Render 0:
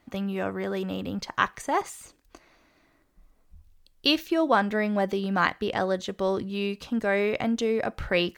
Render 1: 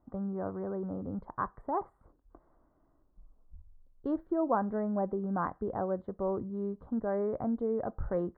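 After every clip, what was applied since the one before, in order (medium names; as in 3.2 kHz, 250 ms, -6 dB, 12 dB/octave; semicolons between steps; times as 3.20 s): inverse Chebyshev low-pass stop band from 2.4 kHz, stop band 40 dB; bass shelf 82 Hz +9 dB; trim -6.5 dB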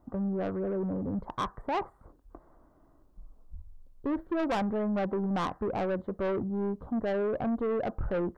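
saturation -33.5 dBFS, distortion -9 dB; trim +7.5 dB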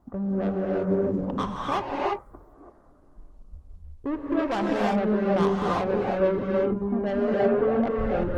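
gated-style reverb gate 370 ms rising, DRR -3.5 dB; trim +1.5 dB; Opus 16 kbps 48 kHz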